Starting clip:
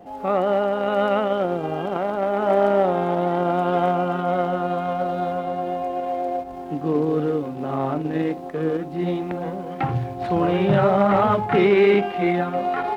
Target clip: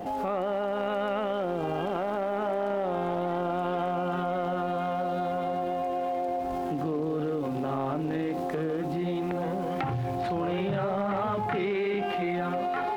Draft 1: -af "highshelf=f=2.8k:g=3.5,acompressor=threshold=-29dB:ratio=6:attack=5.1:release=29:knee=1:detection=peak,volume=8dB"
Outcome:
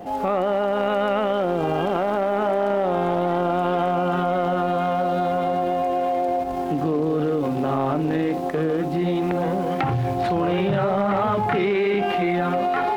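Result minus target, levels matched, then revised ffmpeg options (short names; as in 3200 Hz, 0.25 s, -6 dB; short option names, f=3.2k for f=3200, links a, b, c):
compressor: peak gain reduction -7.5 dB
-af "highshelf=f=2.8k:g=3.5,acompressor=threshold=-38dB:ratio=6:attack=5.1:release=29:knee=1:detection=peak,volume=8dB"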